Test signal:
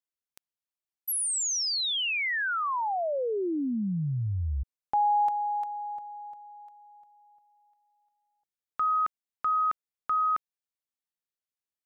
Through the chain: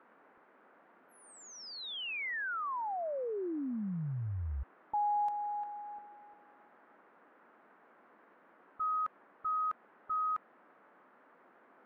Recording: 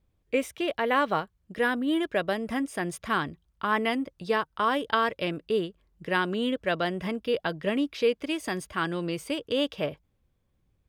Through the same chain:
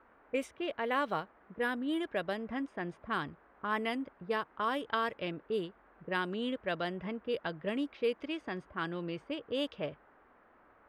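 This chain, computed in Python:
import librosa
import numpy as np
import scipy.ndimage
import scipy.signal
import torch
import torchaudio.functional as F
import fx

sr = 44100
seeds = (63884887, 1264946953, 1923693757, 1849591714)

y = fx.env_lowpass(x, sr, base_hz=350.0, full_db=-21.5)
y = fx.dmg_noise_band(y, sr, seeds[0], low_hz=210.0, high_hz=1600.0, level_db=-56.0)
y = y * librosa.db_to_amplitude(-7.5)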